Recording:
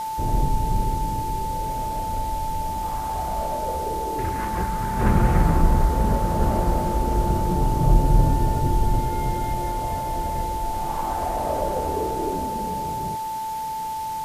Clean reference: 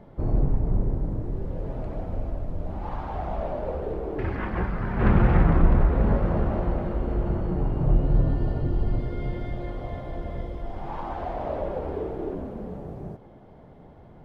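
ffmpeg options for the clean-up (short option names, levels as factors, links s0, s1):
-af "adeclick=t=4,bandreject=f=880:w=30,afwtdn=0.0079,asetnsamples=n=441:p=0,asendcmd='6.4 volume volume -3.5dB',volume=1"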